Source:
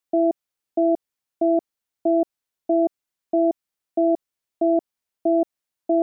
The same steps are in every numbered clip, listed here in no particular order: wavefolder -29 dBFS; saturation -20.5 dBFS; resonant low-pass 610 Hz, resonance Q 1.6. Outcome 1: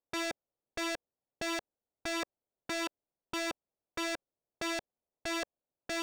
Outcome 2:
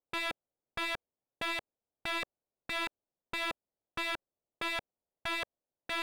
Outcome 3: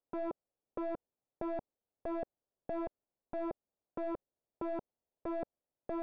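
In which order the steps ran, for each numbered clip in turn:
resonant low-pass > saturation > wavefolder; saturation > resonant low-pass > wavefolder; saturation > wavefolder > resonant low-pass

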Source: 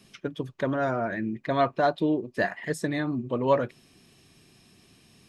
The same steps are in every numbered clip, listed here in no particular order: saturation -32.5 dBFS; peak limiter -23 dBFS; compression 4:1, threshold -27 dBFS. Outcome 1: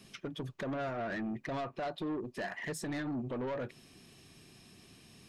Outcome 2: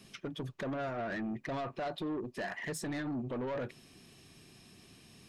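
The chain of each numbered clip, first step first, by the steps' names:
compression > peak limiter > saturation; peak limiter > compression > saturation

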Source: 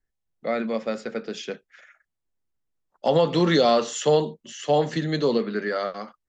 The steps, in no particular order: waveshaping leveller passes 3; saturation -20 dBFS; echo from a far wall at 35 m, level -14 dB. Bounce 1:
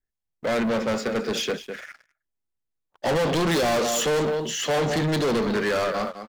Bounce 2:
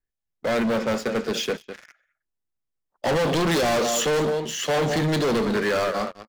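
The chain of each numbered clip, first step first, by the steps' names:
echo from a far wall > saturation > waveshaping leveller; echo from a far wall > waveshaping leveller > saturation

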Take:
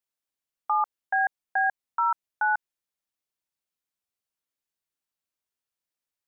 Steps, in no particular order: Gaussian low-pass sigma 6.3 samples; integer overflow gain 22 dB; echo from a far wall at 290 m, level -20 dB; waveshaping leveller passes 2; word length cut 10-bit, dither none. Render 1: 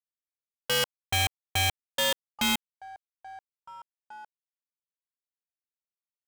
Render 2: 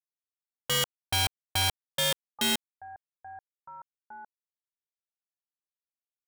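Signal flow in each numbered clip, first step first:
echo from a far wall > word length cut > Gaussian low-pass > waveshaping leveller > integer overflow; echo from a far wall > word length cut > waveshaping leveller > Gaussian low-pass > integer overflow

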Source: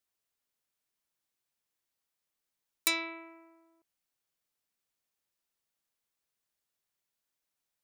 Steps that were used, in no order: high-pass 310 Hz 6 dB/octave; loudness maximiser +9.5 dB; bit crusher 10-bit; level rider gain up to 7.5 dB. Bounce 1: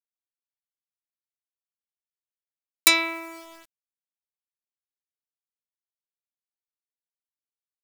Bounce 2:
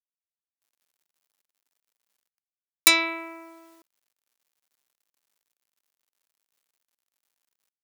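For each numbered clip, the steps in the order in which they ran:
high-pass > bit crusher > loudness maximiser > level rider; loudness maximiser > level rider > bit crusher > high-pass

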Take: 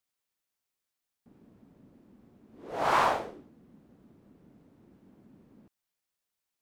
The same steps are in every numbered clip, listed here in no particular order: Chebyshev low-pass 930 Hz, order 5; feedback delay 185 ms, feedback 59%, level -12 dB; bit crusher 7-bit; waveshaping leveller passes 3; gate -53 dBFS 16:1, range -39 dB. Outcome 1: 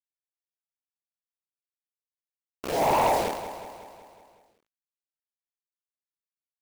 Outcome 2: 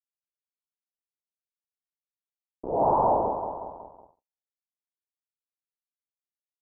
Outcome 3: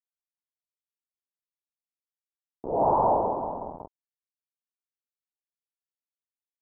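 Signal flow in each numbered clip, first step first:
Chebyshev low-pass > bit crusher > waveshaping leveller > gate > feedback delay; bit crusher > feedback delay > waveshaping leveller > gate > Chebyshev low-pass; feedback delay > bit crusher > gate > waveshaping leveller > Chebyshev low-pass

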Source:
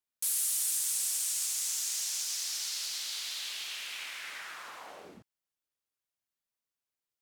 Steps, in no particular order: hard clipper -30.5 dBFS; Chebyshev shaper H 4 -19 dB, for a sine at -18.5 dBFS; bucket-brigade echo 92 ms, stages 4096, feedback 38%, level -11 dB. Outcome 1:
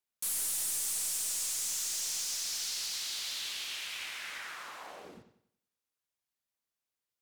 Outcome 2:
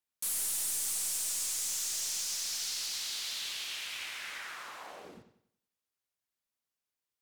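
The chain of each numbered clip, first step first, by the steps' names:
bucket-brigade echo > Chebyshev shaper > hard clipper; Chebyshev shaper > hard clipper > bucket-brigade echo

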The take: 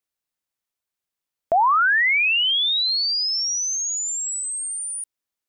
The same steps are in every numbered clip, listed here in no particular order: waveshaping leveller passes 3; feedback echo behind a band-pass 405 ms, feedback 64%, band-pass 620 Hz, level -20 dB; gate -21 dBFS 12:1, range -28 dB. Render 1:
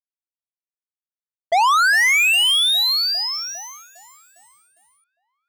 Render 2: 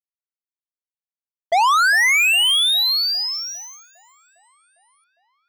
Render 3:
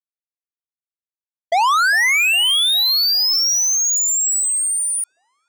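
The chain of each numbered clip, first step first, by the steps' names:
gate > feedback echo behind a band-pass > waveshaping leveller; gate > waveshaping leveller > feedback echo behind a band-pass; waveshaping leveller > gate > feedback echo behind a band-pass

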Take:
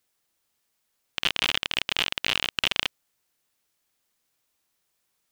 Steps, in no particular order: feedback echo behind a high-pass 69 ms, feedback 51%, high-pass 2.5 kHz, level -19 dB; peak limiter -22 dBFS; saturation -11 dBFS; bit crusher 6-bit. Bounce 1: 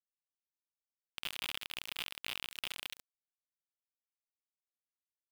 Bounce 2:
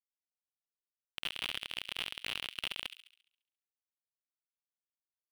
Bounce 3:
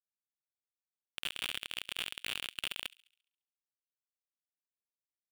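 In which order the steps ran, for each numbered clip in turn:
feedback echo behind a high-pass > peak limiter > saturation > bit crusher; bit crusher > saturation > feedback echo behind a high-pass > peak limiter; saturation > peak limiter > bit crusher > feedback echo behind a high-pass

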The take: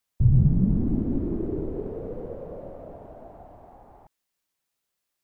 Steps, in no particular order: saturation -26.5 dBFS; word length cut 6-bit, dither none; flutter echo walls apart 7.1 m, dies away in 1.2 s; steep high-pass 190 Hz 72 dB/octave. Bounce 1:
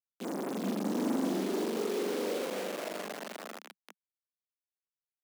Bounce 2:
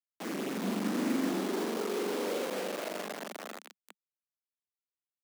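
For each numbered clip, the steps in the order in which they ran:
flutter echo > word length cut > saturation > steep high-pass; flutter echo > saturation > word length cut > steep high-pass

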